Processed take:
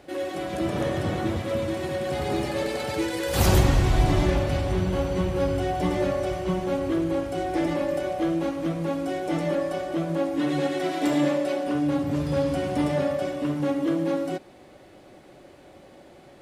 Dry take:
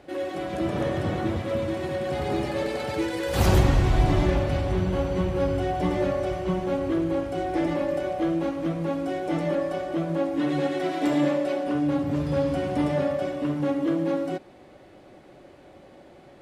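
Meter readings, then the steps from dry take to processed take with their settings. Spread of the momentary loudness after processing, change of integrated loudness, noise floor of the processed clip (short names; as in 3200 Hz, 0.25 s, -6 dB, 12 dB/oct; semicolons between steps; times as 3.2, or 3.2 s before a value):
6 LU, 0.0 dB, -50 dBFS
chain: high shelf 4700 Hz +7.5 dB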